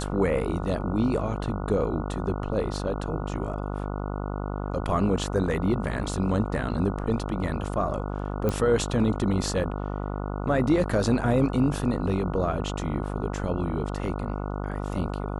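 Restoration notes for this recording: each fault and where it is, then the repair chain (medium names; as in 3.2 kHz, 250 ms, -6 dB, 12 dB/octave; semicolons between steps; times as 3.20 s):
buzz 50 Hz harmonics 29 -31 dBFS
8.49 s: pop -13 dBFS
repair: de-click; de-hum 50 Hz, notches 29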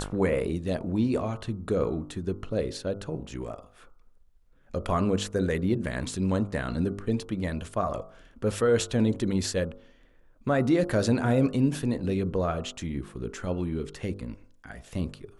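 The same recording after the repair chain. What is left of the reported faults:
nothing left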